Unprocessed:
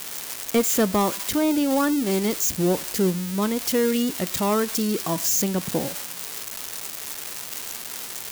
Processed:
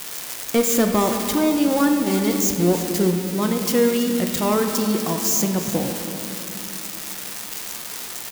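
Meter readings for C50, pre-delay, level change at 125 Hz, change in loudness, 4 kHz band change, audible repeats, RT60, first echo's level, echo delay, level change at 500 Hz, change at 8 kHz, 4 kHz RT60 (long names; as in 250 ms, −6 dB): 5.5 dB, 4 ms, +3.5 dB, +2.5 dB, +2.0 dB, 1, 2.7 s, −14.0 dB, 331 ms, +3.0 dB, +1.5 dB, 1.3 s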